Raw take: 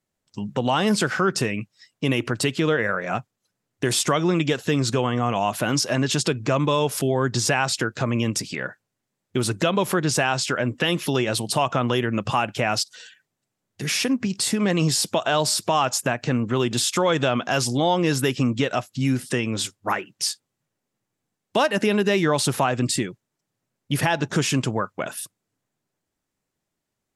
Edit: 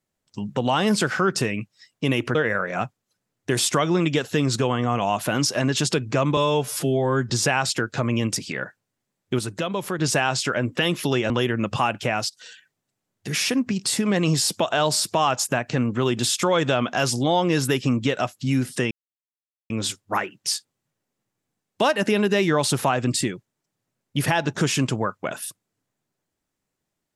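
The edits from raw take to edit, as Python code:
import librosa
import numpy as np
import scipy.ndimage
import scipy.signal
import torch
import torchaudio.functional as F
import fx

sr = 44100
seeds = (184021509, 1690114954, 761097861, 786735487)

y = fx.edit(x, sr, fx.cut(start_s=2.35, length_s=0.34),
    fx.stretch_span(start_s=6.71, length_s=0.62, factor=1.5),
    fx.clip_gain(start_s=9.42, length_s=0.6, db=-5.5),
    fx.cut(start_s=11.33, length_s=0.51),
    fx.fade_out_to(start_s=12.55, length_s=0.4, floor_db=-6.0),
    fx.insert_silence(at_s=19.45, length_s=0.79), tone=tone)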